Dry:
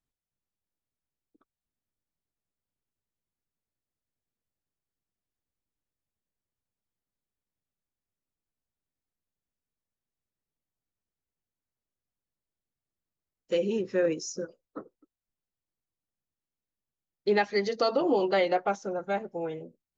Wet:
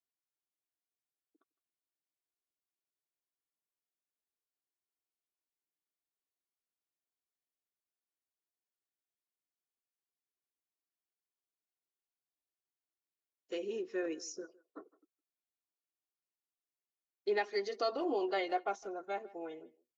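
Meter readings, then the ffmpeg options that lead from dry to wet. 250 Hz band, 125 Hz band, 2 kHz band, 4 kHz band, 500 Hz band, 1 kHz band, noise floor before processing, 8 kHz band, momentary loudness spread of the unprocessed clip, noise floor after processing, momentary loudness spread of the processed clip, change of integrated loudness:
-9.5 dB, under -20 dB, -8.0 dB, -8.0 dB, -9.5 dB, -7.0 dB, under -85 dBFS, no reading, 15 LU, under -85 dBFS, 17 LU, -9.0 dB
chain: -filter_complex "[0:a]highpass=300,aecho=1:1:2.8:0.53,asplit=2[s0][s1];[s1]adelay=160,highpass=300,lowpass=3400,asoftclip=type=hard:threshold=0.0841,volume=0.0891[s2];[s0][s2]amix=inputs=2:normalize=0,volume=0.355"

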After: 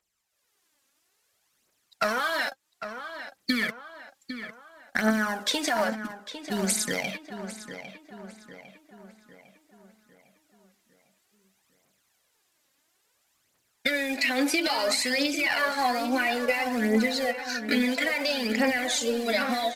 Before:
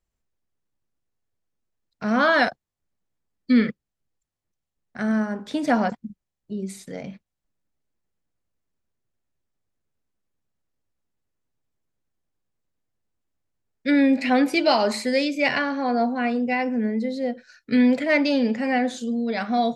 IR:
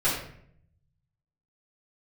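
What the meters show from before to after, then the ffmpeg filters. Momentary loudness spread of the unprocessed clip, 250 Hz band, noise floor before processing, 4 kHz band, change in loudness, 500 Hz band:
14 LU, -7.5 dB, -84 dBFS, +3.5 dB, -4.5 dB, -4.0 dB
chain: -filter_complex "[0:a]highpass=f=1200:p=1,highshelf=f=2500:g=2.5,dynaudnorm=f=150:g=5:m=4.22,alimiter=limit=0.224:level=0:latency=1:release=62,acompressor=threshold=0.0316:ratio=12,acrusher=bits=4:mode=log:mix=0:aa=0.000001,aphaser=in_gain=1:out_gain=1:delay=3.8:decay=0.6:speed=0.59:type=triangular,asplit=2[s0][s1];[s1]adelay=803,lowpass=f=3400:p=1,volume=0.316,asplit=2[s2][s3];[s3]adelay=803,lowpass=f=3400:p=1,volume=0.51,asplit=2[s4][s5];[s5]adelay=803,lowpass=f=3400:p=1,volume=0.51,asplit=2[s6][s7];[s7]adelay=803,lowpass=f=3400:p=1,volume=0.51,asplit=2[s8][s9];[s9]adelay=803,lowpass=f=3400:p=1,volume=0.51,asplit=2[s10][s11];[s11]adelay=803,lowpass=f=3400:p=1,volume=0.51[s12];[s0][s2][s4][s6][s8][s10][s12]amix=inputs=7:normalize=0,aresample=32000,aresample=44100,volume=1.88"

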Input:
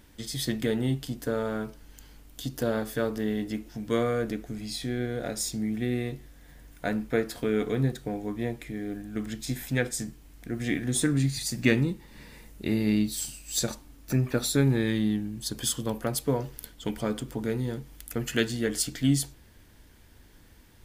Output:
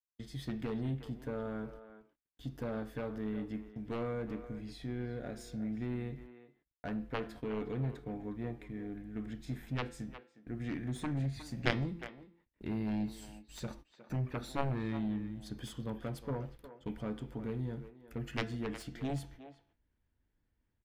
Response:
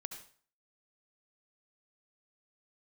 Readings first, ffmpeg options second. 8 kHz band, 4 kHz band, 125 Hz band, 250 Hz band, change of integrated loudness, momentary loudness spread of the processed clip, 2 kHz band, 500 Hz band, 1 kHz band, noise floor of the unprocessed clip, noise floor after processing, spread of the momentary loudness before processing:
-24.5 dB, -14.5 dB, -8.5 dB, -10.0 dB, -10.5 dB, 11 LU, -10.5 dB, -11.0 dB, -5.5 dB, -54 dBFS, -81 dBFS, 11 LU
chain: -filter_complex "[0:a]aeval=exprs='0.398*(cos(1*acos(clip(val(0)/0.398,-1,1)))-cos(1*PI/2))+0.178*(cos(3*acos(clip(val(0)/0.398,-1,1)))-cos(3*PI/2))':c=same,bandreject=f=170.3:t=h:w=4,bandreject=f=340.6:t=h:w=4,bandreject=f=510.9:t=h:w=4,bandreject=f=681.2:t=h:w=4,bandreject=f=851.5:t=h:w=4,bandreject=f=1021.8:t=h:w=4,bandreject=f=1192.1:t=h:w=4,bandreject=f=1362.4:t=h:w=4,bandreject=f=1532.7:t=h:w=4,bandreject=f=1703:t=h:w=4,bandreject=f=1873.3:t=h:w=4,bandreject=f=2043.6:t=h:w=4,bandreject=f=2213.9:t=h:w=4,bandreject=f=2384.2:t=h:w=4,bandreject=f=2554.5:t=h:w=4,bandreject=f=2724.8:t=h:w=4,bandreject=f=2895.1:t=h:w=4,bandreject=f=3065.4:t=h:w=4,bandreject=f=3235.7:t=h:w=4,bandreject=f=3406:t=h:w=4,bandreject=f=3576.3:t=h:w=4,bandreject=f=3746.6:t=h:w=4,bandreject=f=3916.9:t=h:w=4,bandreject=f=4087.2:t=h:w=4,bandreject=f=4257.5:t=h:w=4,bandreject=f=4427.8:t=h:w=4,bandreject=f=4598.1:t=h:w=4,bandreject=f=4768.4:t=h:w=4,bandreject=f=4938.7:t=h:w=4,bandreject=f=5109:t=h:w=4,bandreject=f=5279.3:t=h:w=4,bandreject=f=5449.6:t=h:w=4,bandreject=f=5619.9:t=h:w=4,bandreject=f=5790.2:t=h:w=4,bandreject=f=5960.5:t=h:w=4,bandreject=f=6130.8:t=h:w=4,bandreject=f=6301.1:t=h:w=4,bandreject=f=6471.4:t=h:w=4,agate=range=0.00158:threshold=0.00251:ratio=16:detection=peak,areverse,acompressor=mode=upward:threshold=0.00251:ratio=2.5,areverse,bass=f=250:g=4,treble=f=4000:g=-15,asplit=2[s0][s1];[s1]adelay=360,highpass=300,lowpass=3400,asoftclip=type=hard:threshold=0.133,volume=0.251[s2];[s0][s2]amix=inputs=2:normalize=0"

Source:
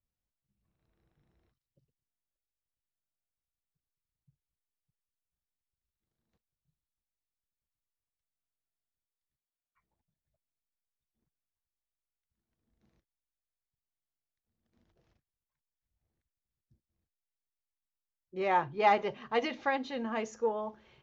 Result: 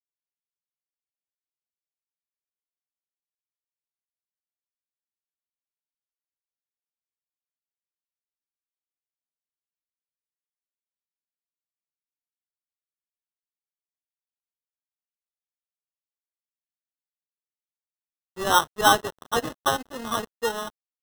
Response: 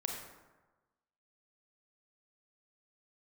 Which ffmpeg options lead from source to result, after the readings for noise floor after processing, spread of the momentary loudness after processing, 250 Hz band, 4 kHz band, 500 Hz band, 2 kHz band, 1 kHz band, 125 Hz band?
under -85 dBFS, 11 LU, +3.5 dB, +16.0 dB, +3.0 dB, +8.5 dB, +6.5 dB, +8.5 dB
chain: -af "equalizer=f=1200:t=o:w=0.54:g=12.5,acrusher=samples=19:mix=1:aa=0.000001,aeval=exprs='sgn(val(0))*max(abs(val(0))-0.0112,0)':c=same,volume=1.68"

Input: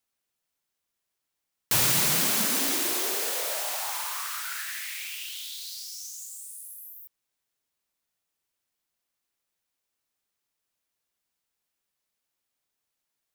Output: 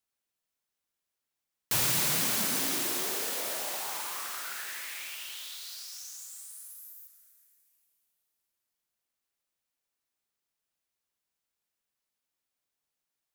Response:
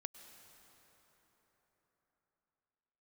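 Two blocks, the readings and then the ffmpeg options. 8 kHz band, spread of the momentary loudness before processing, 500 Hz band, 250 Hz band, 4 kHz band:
-4.0 dB, 18 LU, -4.0 dB, -4.0 dB, -4.0 dB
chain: -filter_complex "[1:a]atrim=start_sample=2205[s0];[0:a][s0]afir=irnorm=-1:irlink=0"

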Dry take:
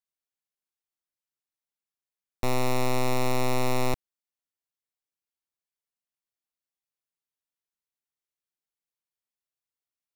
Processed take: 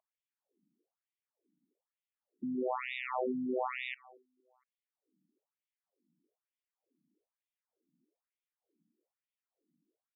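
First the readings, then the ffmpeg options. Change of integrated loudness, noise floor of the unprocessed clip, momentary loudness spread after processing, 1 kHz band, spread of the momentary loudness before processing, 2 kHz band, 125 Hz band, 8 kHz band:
-8.0 dB, under -85 dBFS, 7 LU, -8.0 dB, 5 LU, -5.0 dB, -29.0 dB, under -35 dB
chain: -filter_complex "[0:a]acrossover=split=350[s0][s1];[s0]acompressor=mode=upward:threshold=0.00501:ratio=2.5[s2];[s1]aecho=1:1:231|462|693:0.0668|0.0301|0.0135[s3];[s2][s3]amix=inputs=2:normalize=0,afftfilt=real='re*between(b*sr/1024,220*pow(2700/220,0.5+0.5*sin(2*PI*1.1*pts/sr))/1.41,220*pow(2700/220,0.5+0.5*sin(2*PI*1.1*pts/sr))*1.41)':imag='im*between(b*sr/1024,220*pow(2700/220,0.5+0.5*sin(2*PI*1.1*pts/sr))/1.41,220*pow(2700/220,0.5+0.5*sin(2*PI*1.1*pts/sr))*1.41)':win_size=1024:overlap=0.75"

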